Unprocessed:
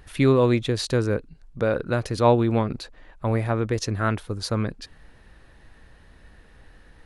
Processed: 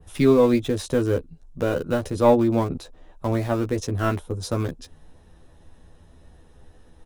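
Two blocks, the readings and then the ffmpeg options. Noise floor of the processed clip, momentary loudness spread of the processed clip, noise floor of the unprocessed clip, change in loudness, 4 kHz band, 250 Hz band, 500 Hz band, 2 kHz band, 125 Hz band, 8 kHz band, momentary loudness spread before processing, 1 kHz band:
-52 dBFS, 12 LU, -52 dBFS, +1.0 dB, -4.0 dB, +2.0 dB, +2.0 dB, -3.0 dB, -2.5 dB, -1.0 dB, 12 LU, -0.5 dB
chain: -filter_complex "[0:a]bandreject=f=4500:w=5.1,adynamicequalizer=threshold=0.00447:dfrequency=5500:dqfactor=0.74:tfrequency=5500:tqfactor=0.74:attack=5:release=100:ratio=0.375:range=3:mode=cutabove:tftype=bell,acrossover=split=130|1200|3100[s0][s1][s2][s3];[s2]acrusher=bits=4:dc=4:mix=0:aa=0.000001[s4];[s0][s1][s4][s3]amix=inputs=4:normalize=0,asplit=2[s5][s6];[s6]adelay=12,volume=0.668[s7];[s5][s7]amix=inputs=2:normalize=0"

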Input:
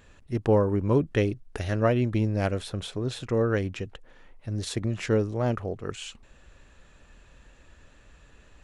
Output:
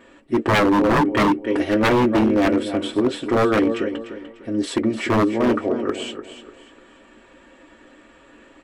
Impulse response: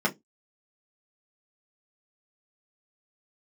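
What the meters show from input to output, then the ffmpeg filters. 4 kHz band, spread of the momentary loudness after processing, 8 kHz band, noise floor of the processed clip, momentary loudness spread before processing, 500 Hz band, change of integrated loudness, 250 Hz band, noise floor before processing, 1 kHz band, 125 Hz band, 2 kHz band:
+9.0 dB, 11 LU, +4.0 dB, -51 dBFS, 12 LU, +6.5 dB, +7.5 dB, +10.5 dB, -56 dBFS, +13.0 dB, -2.0 dB, +12.0 dB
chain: -filter_complex "[0:a]aecho=1:1:297|594|891:0.282|0.0902|0.0289[s0];[1:a]atrim=start_sample=2205,asetrate=66150,aresample=44100[s1];[s0][s1]afir=irnorm=-1:irlink=0,aeval=exprs='0.282*(abs(mod(val(0)/0.282+3,4)-2)-1)':c=same"

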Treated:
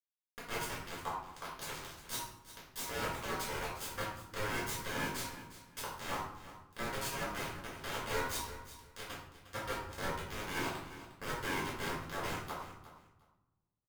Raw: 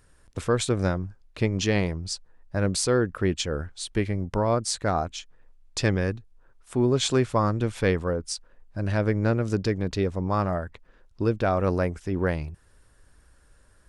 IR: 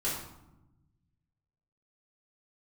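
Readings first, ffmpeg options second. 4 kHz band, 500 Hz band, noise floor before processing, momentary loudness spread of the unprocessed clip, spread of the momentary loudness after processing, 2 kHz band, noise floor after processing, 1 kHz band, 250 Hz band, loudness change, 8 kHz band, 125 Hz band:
-9.0 dB, -17.5 dB, -59 dBFS, 11 LU, 12 LU, -6.0 dB, -82 dBFS, -8.0 dB, -19.0 dB, -13.5 dB, -9.5 dB, -20.5 dB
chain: -filter_complex "[0:a]alimiter=limit=0.15:level=0:latency=1:release=171,areverse,acompressor=threshold=0.0178:ratio=12,areverse,acrusher=bits=3:dc=4:mix=0:aa=0.000001,aeval=exprs='(mod(70.8*val(0)+1,2)-1)/70.8':c=same,aeval=exprs='val(0)*sin(2*PI*950*n/s)':c=same,aecho=1:1:356|712:0.188|0.0358[s0];[1:a]atrim=start_sample=2205,asetrate=48510,aresample=44100[s1];[s0][s1]afir=irnorm=-1:irlink=0,volume=5.62"

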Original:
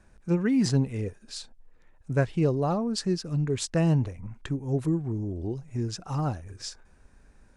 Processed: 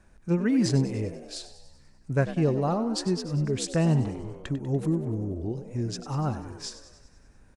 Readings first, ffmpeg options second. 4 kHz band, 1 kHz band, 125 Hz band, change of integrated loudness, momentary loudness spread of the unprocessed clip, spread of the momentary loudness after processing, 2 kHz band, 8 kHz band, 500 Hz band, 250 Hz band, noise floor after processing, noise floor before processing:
+0.5 dB, +1.0 dB, 0.0 dB, 0.0 dB, 15 LU, 15 LU, +0.5 dB, +0.5 dB, +0.5 dB, +0.5 dB, -56 dBFS, -58 dBFS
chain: -filter_complex "[0:a]asplit=8[s0][s1][s2][s3][s4][s5][s6][s7];[s1]adelay=97,afreqshift=64,volume=0.224[s8];[s2]adelay=194,afreqshift=128,volume=0.136[s9];[s3]adelay=291,afreqshift=192,volume=0.0832[s10];[s4]adelay=388,afreqshift=256,volume=0.0507[s11];[s5]adelay=485,afreqshift=320,volume=0.0309[s12];[s6]adelay=582,afreqshift=384,volume=0.0188[s13];[s7]adelay=679,afreqshift=448,volume=0.0115[s14];[s0][s8][s9][s10][s11][s12][s13][s14]amix=inputs=8:normalize=0"

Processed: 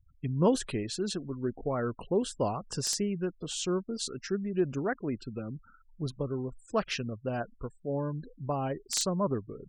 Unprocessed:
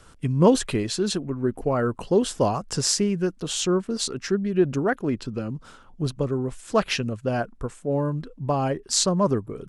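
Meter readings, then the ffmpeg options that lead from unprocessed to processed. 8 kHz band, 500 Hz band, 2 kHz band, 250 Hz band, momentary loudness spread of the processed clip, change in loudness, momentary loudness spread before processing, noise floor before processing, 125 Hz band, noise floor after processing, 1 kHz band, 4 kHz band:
-8.5 dB, -8.0 dB, -8.0 dB, -8.0 dB, 8 LU, -8.0 dB, 9 LU, -51 dBFS, -8.0 dB, -61 dBFS, -8.0 dB, -8.5 dB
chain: -filter_complex "[0:a]afftfilt=real='re*gte(hypot(re,im),0.0126)':imag='im*gte(hypot(re,im),0.0126)':win_size=1024:overlap=0.75,acrossover=split=1600[s0][s1];[s1]aeval=exprs='(mod(3.16*val(0)+1,2)-1)/3.16':c=same[s2];[s0][s2]amix=inputs=2:normalize=0,volume=0.398"

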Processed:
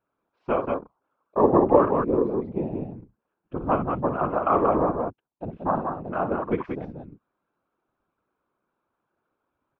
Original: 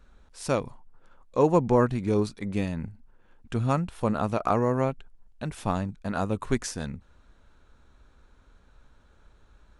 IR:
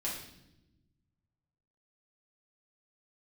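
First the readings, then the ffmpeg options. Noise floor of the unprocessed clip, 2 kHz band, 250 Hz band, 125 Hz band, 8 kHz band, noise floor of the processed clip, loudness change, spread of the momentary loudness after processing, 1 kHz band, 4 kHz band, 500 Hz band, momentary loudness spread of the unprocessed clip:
-59 dBFS, -1.0 dB, +1.5 dB, -4.5 dB, under -35 dB, -82 dBFS, +3.0 dB, 17 LU, +5.5 dB, under -10 dB, +4.0 dB, 15 LU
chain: -filter_complex "[0:a]afwtdn=0.0178,highpass=f=150:w=0.5412,highpass=f=150:w=1.3066,equalizer=f=210:t=q:w=4:g=-7,equalizer=f=320:t=q:w=4:g=6,equalizer=f=700:t=q:w=4:g=4,equalizer=f=1100:t=q:w=4:g=6,equalizer=f=1800:t=q:w=4:g=-8,lowpass=f=2700:w=0.5412,lowpass=f=2700:w=1.3066,asplit=2[s0][s1];[s1]aecho=0:1:55.39|183.7:0.355|0.631[s2];[s0][s2]amix=inputs=2:normalize=0,afftfilt=real='hypot(re,im)*cos(2*PI*random(0))':imag='hypot(re,im)*sin(2*PI*random(1))':win_size=512:overlap=0.75,volume=2.11"

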